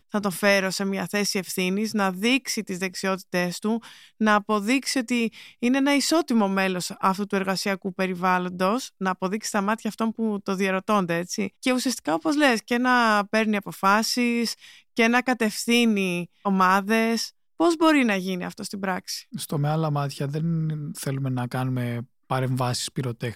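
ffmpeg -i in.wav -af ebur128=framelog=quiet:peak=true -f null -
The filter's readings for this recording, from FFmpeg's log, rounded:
Integrated loudness:
  I:         -24.0 LUFS
  Threshold: -34.0 LUFS
Loudness range:
  LRA:         5.2 LU
  Threshold: -43.9 LUFS
  LRA low:   -27.2 LUFS
  LRA high:  -22.0 LUFS
True peak:
  Peak:       -6.4 dBFS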